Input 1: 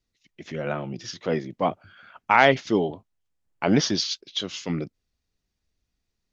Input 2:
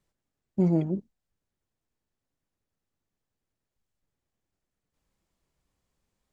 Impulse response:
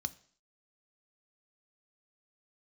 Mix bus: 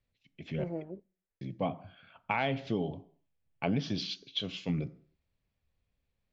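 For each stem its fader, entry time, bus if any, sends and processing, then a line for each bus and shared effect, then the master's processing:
-3.0 dB, 0.00 s, muted 0.64–1.41 s, send -3.5 dB, none
-11.0 dB, 0.00 s, send -17 dB, ten-band graphic EQ 125 Hz -9 dB, 250 Hz -6 dB, 500 Hz +8 dB, 2 kHz +10 dB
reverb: on, RT60 0.50 s, pre-delay 3 ms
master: low-pass 2.7 kHz 6 dB/octave; compression 6:1, threshold -27 dBFS, peak gain reduction 9.5 dB

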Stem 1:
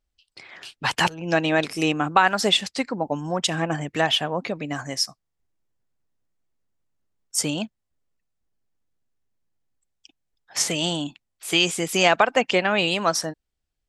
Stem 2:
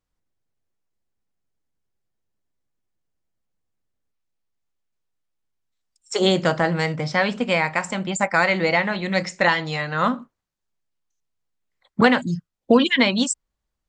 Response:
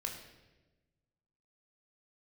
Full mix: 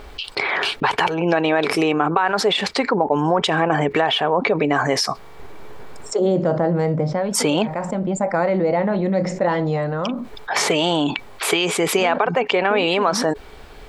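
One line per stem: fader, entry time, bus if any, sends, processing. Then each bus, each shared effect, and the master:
-1.5 dB, 0.00 s, no send, high-order bell 1.9 kHz +10 dB 2.7 oct; compression, threshold -22 dBFS, peak gain reduction 18 dB; small resonant body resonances 420/2300 Hz, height 11 dB, ringing for 60 ms
-13.0 dB, 0.00 s, no send, tilt shelf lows +5 dB, about 820 Hz; auto duck -16 dB, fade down 0.30 s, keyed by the first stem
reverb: none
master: FFT filter 120 Hz 0 dB, 570 Hz +8 dB, 2.6 kHz -7 dB; level flattener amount 70%

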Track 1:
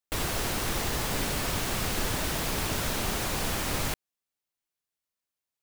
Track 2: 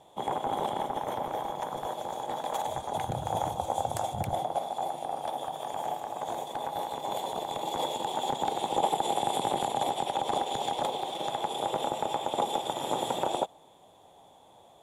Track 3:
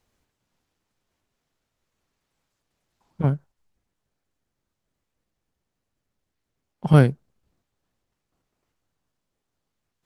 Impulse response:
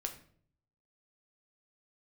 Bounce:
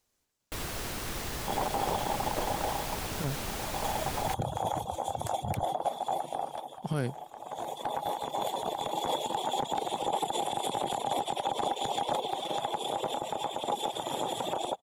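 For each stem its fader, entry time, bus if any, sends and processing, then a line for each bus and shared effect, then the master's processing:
-6.5 dB, 0.40 s, no send, none
+2.0 dB, 1.30 s, no send, reverb removal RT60 0.55 s; auto duck -13 dB, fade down 0.45 s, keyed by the third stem
-6.5 dB, 0.00 s, no send, tone controls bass -5 dB, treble +9 dB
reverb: none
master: peak limiter -20 dBFS, peak gain reduction 10.5 dB

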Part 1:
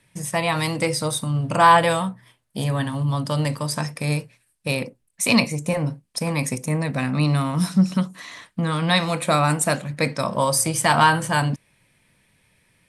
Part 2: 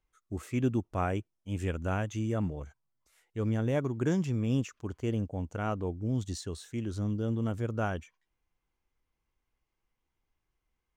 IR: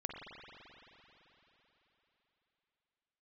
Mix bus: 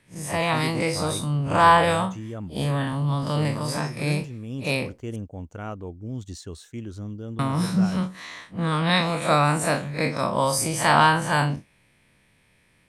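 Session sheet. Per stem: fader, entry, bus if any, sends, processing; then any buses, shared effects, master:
-1.0 dB, 0.00 s, muted 5.16–7.39 s, no send, spectral blur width 90 ms; treble shelf 5.8 kHz -6.5 dB; harmonic-percussive split percussive +7 dB
-3.0 dB, 0.00 s, no send, expander -49 dBFS; gain riding within 4 dB 0.5 s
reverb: none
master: none

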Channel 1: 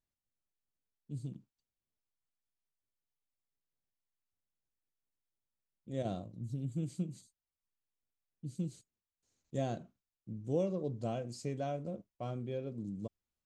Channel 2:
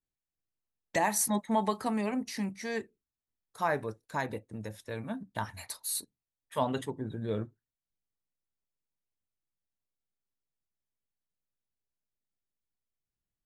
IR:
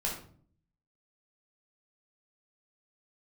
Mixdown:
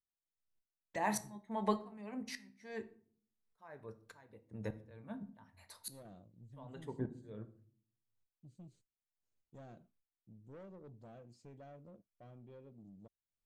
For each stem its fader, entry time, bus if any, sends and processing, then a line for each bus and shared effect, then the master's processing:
-13.5 dB, 0.00 s, no send, saturation -35.5 dBFS, distortion -10 dB
+0.5 dB, 0.00 s, send -13 dB, sawtooth tremolo in dB swelling 1.7 Hz, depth 37 dB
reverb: on, RT60 0.50 s, pre-delay 9 ms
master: treble shelf 4.3 kHz -10 dB

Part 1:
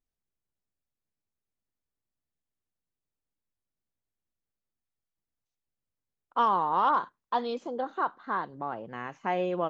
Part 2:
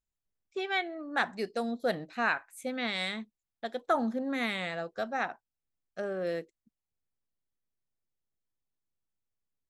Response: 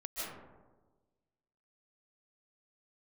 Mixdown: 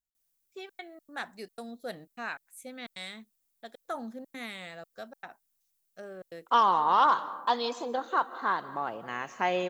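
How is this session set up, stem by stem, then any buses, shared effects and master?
+1.0 dB, 0.15 s, send -15 dB, tilt EQ +2 dB/octave
-9.0 dB, 0.00 s, no send, trance gate "x.xxxxx.xx.xxx" 152 bpm -60 dB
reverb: on, RT60 1.3 s, pre-delay 110 ms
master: treble shelf 6.2 kHz +12 dB

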